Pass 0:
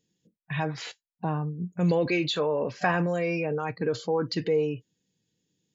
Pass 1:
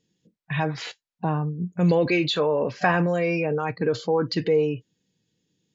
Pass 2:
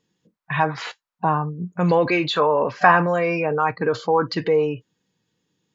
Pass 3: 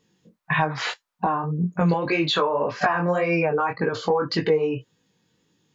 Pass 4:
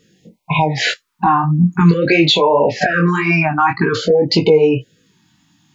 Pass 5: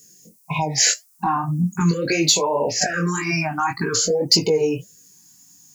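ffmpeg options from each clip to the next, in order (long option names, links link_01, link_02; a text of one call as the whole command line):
ffmpeg -i in.wav -af "lowpass=6400,volume=4dB" out.wav
ffmpeg -i in.wav -af "equalizer=frequency=1100:width_type=o:width=1.4:gain=13,volume=-1dB" out.wav
ffmpeg -i in.wav -af "acompressor=threshold=-24dB:ratio=10,flanger=delay=18:depth=5.1:speed=1.8,volume=8.5dB" out.wav
ffmpeg -i in.wav -af "alimiter=level_in=13dB:limit=-1dB:release=50:level=0:latency=1,afftfilt=real='re*(1-between(b*sr/1024,440*pow(1500/440,0.5+0.5*sin(2*PI*0.5*pts/sr))/1.41,440*pow(1500/440,0.5+0.5*sin(2*PI*0.5*pts/sr))*1.41))':imag='im*(1-between(b*sr/1024,440*pow(1500/440,0.5+0.5*sin(2*PI*0.5*pts/sr))/1.41,440*pow(1500/440,0.5+0.5*sin(2*PI*0.5*pts/sr))*1.41))':win_size=1024:overlap=0.75,volume=-1.5dB" out.wav
ffmpeg -i in.wav -filter_complex "[0:a]flanger=delay=1:depth=3.2:regen=-88:speed=1.6:shape=sinusoidal,acrossover=split=1000[link_01][link_02];[link_02]aexciter=amount=14.9:drive=7.4:freq=5400[link_03];[link_01][link_03]amix=inputs=2:normalize=0,volume=-3.5dB" out.wav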